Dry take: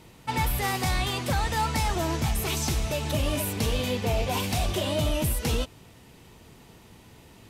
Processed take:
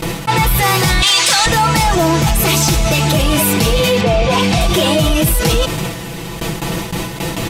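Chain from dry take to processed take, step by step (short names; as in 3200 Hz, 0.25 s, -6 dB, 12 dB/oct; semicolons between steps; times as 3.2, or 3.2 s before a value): 1.02–1.46 weighting filter ITU-R 468; gate with hold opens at -40 dBFS; comb 6 ms, depth 82%; in parallel at -6 dB: soft clip -23.5 dBFS, distortion -12 dB; 4.01–4.61 on the sum: air absorption 69 m; fast leveller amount 70%; gain +6.5 dB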